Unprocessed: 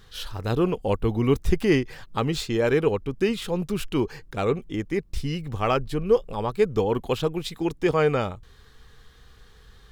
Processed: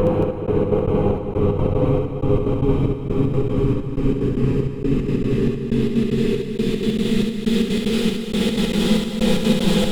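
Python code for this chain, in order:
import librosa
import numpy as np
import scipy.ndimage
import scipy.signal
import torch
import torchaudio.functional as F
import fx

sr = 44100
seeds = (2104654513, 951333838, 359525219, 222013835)

p1 = fx.tilt_shelf(x, sr, db=6.0, hz=1300.0)
p2 = fx.over_compress(p1, sr, threshold_db=-24.0, ratio=-1.0)
p3 = fx.paulstretch(p2, sr, seeds[0], factor=19.0, window_s=0.5, from_s=2.91)
p4 = fx.step_gate(p3, sr, bpm=189, pattern='xxx...xx.x.', floor_db=-60.0, edge_ms=4.5)
p5 = p4 + fx.echo_multitap(p4, sr, ms=(69, 225), db=(-4.0, -7.0), dry=0)
y = p5 * librosa.db_to_amplitude(7.5)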